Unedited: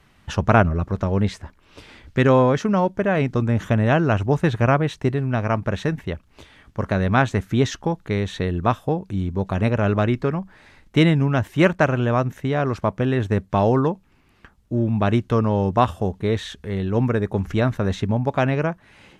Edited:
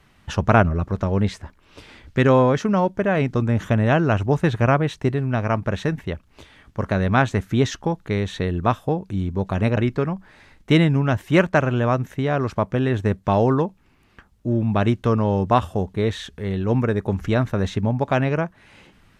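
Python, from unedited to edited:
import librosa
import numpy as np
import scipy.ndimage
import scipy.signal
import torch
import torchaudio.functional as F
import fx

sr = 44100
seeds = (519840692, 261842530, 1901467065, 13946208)

y = fx.edit(x, sr, fx.cut(start_s=9.77, length_s=0.26), tone=tone)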